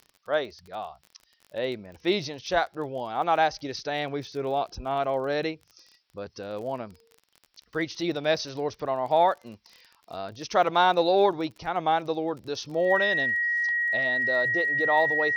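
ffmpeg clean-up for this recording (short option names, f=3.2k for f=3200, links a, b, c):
-af "adeclick=t=4,bandreject=f=1.9k:w=30,agate=range=-21dB:threshold=-55dB"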